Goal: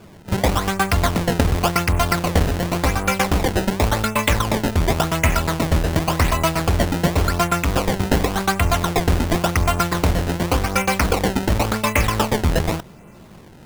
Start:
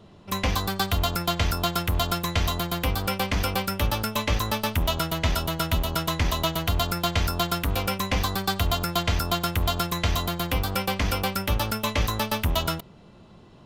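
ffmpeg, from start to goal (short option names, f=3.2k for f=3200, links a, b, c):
-af "highshelf=f=2.9k:t=q:w=3:g=-6.5,bandreject=f=50:t=h:w=6,bandreject=f=100:t=h:w=6,acrusher=samples=22:mix=1:aa=0.000001:lfo=1:lforange=35.2:lforate=0.9,volume=7dB"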